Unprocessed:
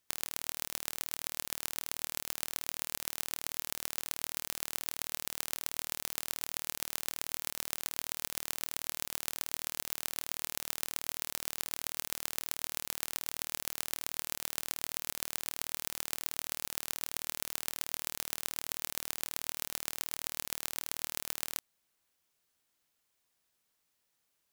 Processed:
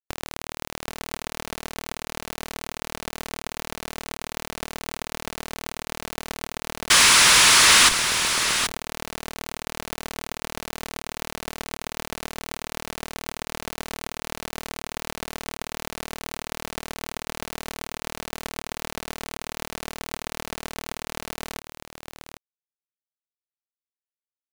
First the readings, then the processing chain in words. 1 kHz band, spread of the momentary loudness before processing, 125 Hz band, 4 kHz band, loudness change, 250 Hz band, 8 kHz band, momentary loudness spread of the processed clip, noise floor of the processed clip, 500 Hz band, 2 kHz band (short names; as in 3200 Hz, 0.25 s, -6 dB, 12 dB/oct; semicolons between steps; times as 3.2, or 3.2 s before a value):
+18.0 dB, 1 LU, +15.0 dB, +17.0 dB, +12.5 dB, +16.0 dB, +13.0 dB, 18 LU, under -85 dBFS, +15.5 dB, +18.5 dB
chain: painted sound noise, 6.9–7.89, 880–11000 Hz -22 dBFS; overdrive pedal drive 25 dB, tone 3900 Hz, clips at -4.5 dBFS; in parallel at -5 dB: Schmitt trigger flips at -20 dBFS; on the sum: bit-crush 6-bit; echo 0.78 s -8.5 dB